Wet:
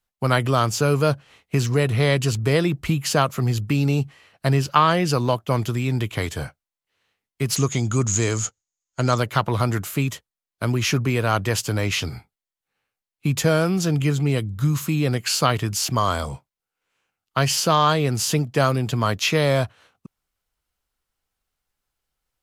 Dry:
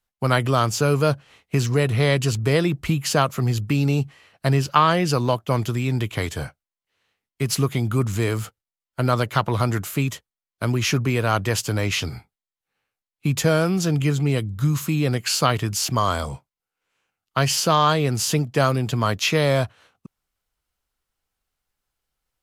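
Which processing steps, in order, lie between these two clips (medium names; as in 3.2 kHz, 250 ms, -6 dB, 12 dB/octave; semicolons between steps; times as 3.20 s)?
7.56–9.18 s: resonant low-pass 6.7 kHz, resonance Q 13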